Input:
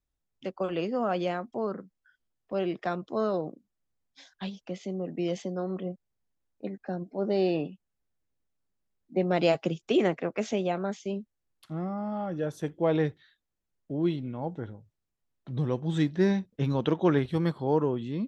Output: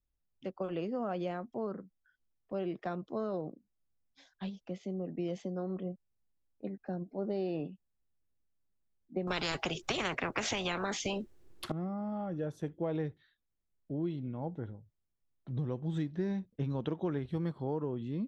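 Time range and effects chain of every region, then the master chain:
0:09.27–0:11.72: parametric band 370 Hz +13 dB 0.55 octaves + every bin compressed towards the loudest bin 10 to 1
whole clip: spectral tilt −1.5 dB per octave; downward compressor, threshold −24 dBFS; level −6.5 dB

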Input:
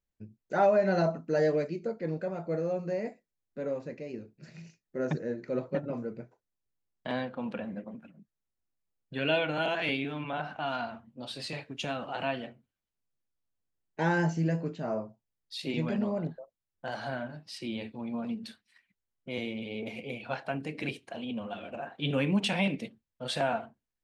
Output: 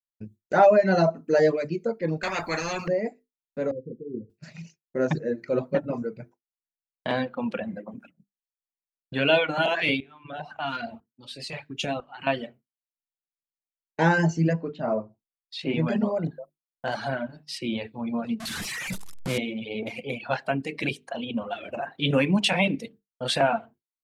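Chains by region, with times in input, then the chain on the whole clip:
0:02.23–0:02.88: high-shelf EQ 4,200 Hz −8.5 dB + every bin compressed towards the loudest bin 4 to 1
0:03.71–0:04.30: Chebyshev low-pass filter 520 Hz, order 10 + upward compression, threshold −53 dBFS
0:10.00–0:12.27: shaped tremolo saw up 1 Hz, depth 80% + auto-filter notch saw up 2 Hz 250–1,800 Hz
0:14.53–0:15.86: low-pass filter 6,300 Hz + high-shelf EQ 4,200 Hz −9.5 dB
0:18.40–0:19.38: linear delta modulator 64 kbit/s, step −33.5 dBFS + parametric band 150 Hz +9 dB 0.99 octaves
whole clip: mains-hum notches 50/100/150/200/250/300/350/400/450 Hz; reverb reduction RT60 1 s; downward expander −53 dBFS; level +8 dB

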